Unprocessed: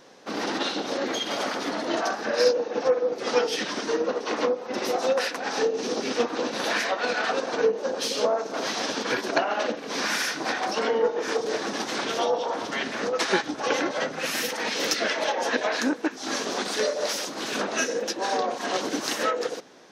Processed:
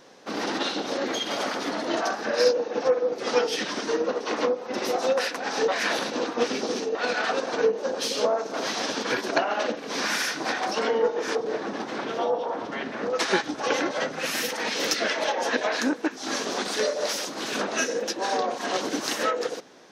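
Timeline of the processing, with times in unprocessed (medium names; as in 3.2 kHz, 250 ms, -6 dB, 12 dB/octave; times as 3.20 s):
5.68–6.95 s: reverse
11.35–13.10 s: low-pass 1.4 kHz 6 dB/octave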